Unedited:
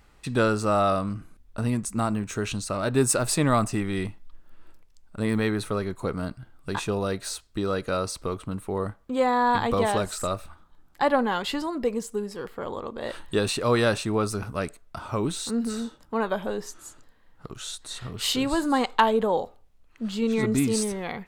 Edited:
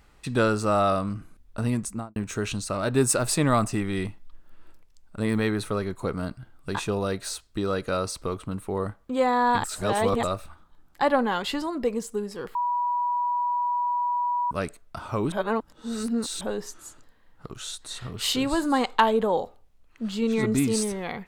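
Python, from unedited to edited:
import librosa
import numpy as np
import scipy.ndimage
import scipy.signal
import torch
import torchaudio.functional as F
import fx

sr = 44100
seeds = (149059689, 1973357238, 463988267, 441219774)

y = fx.studio_fade_out(x, sr, start_s=1.83, length_s=0.33)
y = fx.edit(y, sr, fx.reverse_span(start_s=9.64, length_s=0.59),
    fx.bleep(start_s=12.55, length_s=1.96, hz=973.0, db=-22.5),
    fx.reverse_span(start_s=15.32, length_s=1.09), tone=tone)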